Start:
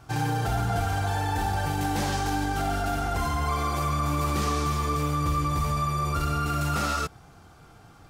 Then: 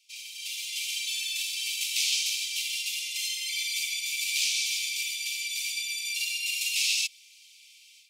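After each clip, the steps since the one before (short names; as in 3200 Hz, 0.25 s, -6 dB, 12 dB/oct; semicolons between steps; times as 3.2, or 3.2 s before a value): steep high-pass 2300 Hz 96 dB/oct; high shelf 10000 Hz -8.5 dB; AGC gain up to 12 dB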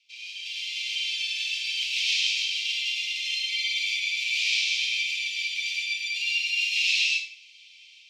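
air absorption 210 m; plate-style reverb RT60 0.62 s, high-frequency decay 0.7×, pre-delay 85 ms, DRR -4 dB; gain +4.5 dB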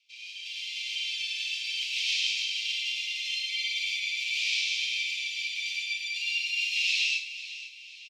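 feedback echo 0.5 s, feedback 41%, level -14 dB; gain -3.5 dB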